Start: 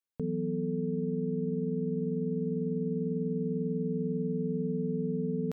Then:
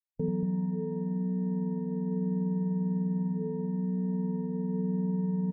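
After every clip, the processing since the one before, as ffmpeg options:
-af "afwtdn=0.01,flanger=delay=6.2:depth=2.8:regen=-56:speed=0.38:shape=sinusoidal,aecho=1:1:87.46|233.2:0.447|0.398,volume=2.11"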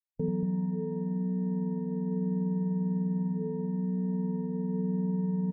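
-af anull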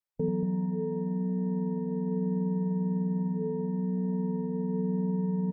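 -af "equalizer=f=710:w=0.39:g=5.5,volume=0.841"

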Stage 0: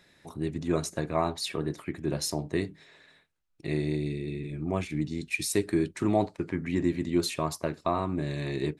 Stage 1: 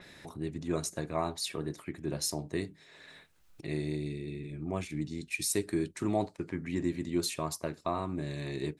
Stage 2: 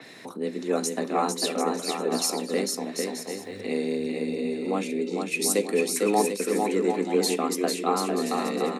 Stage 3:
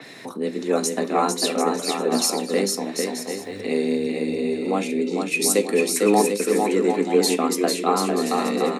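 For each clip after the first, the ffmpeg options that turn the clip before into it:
-af "acompressor=mode=upward:threshold=0.0178:ratio=2.5,adynamicequalizer=threshold=0.00447:dfrequency=4600:dqfactor=0.7:tfrequency=4600:tqfactor=0.7:attack=5:release=100:ratio=0.375:range=3:mode=boostabove:tftype=highshelf,volume=0.562"
-af "afreqshift=100,aecho=1:1:450|742.5|932.6|1056|1137:0.631|0.398|0.251|0.158|0.1,volume=2.11"
-af "flanger=delay=6.7:depth=3.5:regen=81:speed=0.56:shape=triangular,volume=2.82"

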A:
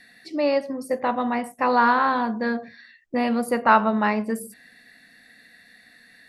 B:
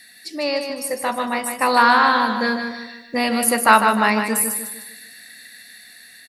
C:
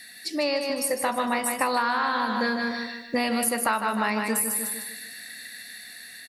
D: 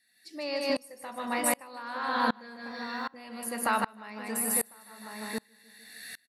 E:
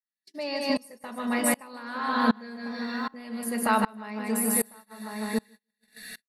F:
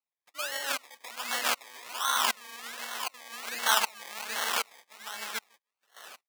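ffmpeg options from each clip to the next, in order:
-filter_complex "[0:a]dynaudnorm=f=620:g=5:m=3.76,crystalizer=i=7:c=0,asplit=2[s0][s1];[s1]aecho=0:1:152|304|456|608|760:0.473|0.199|0.0835|0.0351|0.0147[s2];[s0][s2]amix=inputs=2:normalize=0,volume=0.631"
-af "acompressor=threshold=0.0708:ratio=10,volume=1.19"
-filter_complex "[0:a]asplit=2[s0][s1];[s1]adelay=1050,volume=0.355,highshelf=f=4000:g=-23.6[s2];[s0][s2]amix=inputs=2:normalize=0,aeval=exprs='val(0)*pow(10,-30*if(lt(mod(-1.3*n/s,1),2*abs(-1.3)/1000),1-mod(-1.3*n/s,1)/(2*abs(-1.3)/1000),(mod(-1.3*n/s,1)-2*abs(-1.3)/1000)/(1-2*abs(-1.3)/1000))/20)':c=same,volume=1.33"
-af "lowshelf=f=460:g=6.5,aecho=1:1:4.7:0.57,agate=range=0.0178:threshold=0.00562:ratio=16:detection=peak"
-af "aphaser=in_gain=1:out_gain=1:delay=4.9:decay=0.23:speed=0.39:type=triangular,acrusher=samples=25:mix=1:aa=0.000001:lfo=1:lforange=15:lforate=1.3,highpass=1300,volume=1.5"

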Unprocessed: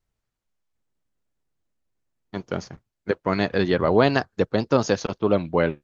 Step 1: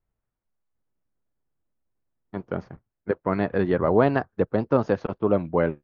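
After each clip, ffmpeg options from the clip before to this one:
-af "lowpass=1600,volume=0.891"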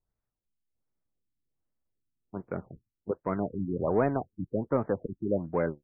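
-filter_complex "[0:a]asplit=2[s0][s1];[s1]asoftclip=type=tanh:threshold=0.0891,volume=0.562[s2];[s0][s2]amix=inputs=2:normalize=0,afftfilt=real='re*lt(b*sr/1024,330*pow(2600/330,0.5+0.5*sin(2*PI*1.3*pts/sr)))':imag='im*lt(b*sr/1024,330*pow(2600/330,0.5+0.5*sin(2*PI*1.3*pts/sr)))':win_size=1024:overlap=0.75,volume=0.376"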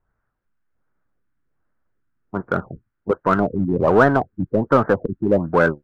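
-filter_complex "[0:a]lowpass=f=1500:t=q:w=3.8,asplit=2[s0][s1];[s1]asoftclip=type=hard:threshold=0.0422,volume=0.447[s2];[s0][s2]amix=inputs=2:normalize=0,volume=2.66"

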